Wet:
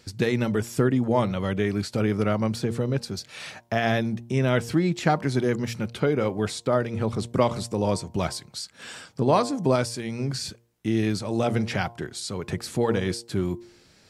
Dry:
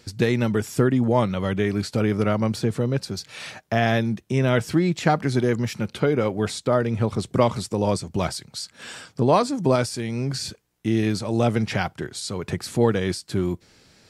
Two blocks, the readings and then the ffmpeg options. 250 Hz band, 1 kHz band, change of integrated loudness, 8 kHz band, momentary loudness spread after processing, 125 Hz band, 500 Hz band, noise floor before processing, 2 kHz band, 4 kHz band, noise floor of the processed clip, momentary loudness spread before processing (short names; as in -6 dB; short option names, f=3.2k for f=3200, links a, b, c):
-2.5 dB, -2.0 dB, -2.5 dB, -2.0 dB, 10 LU, -3.0 dB, -2.5 dB, -59 dBFS, -2.0 dB, -2.0 dB, -57 dBFS, 10 LU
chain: -af "bandreject=f=117.1:t=h:w=4,bandreject=f=234.2:t=h:w=4,bandreject=f=351.3:t=h:w=4,bandreject=f=468.4:t=h:w=4,bandreject=f=585.5:t=h:w=4,bandreject=f=702.6:t=h:w=4,bandreject=f=819.7:t=h:w=4,bandreject=f=936.8:t=h:w=4,bandreject=f=1.0539k:t=h:w=4,volume=-2dB"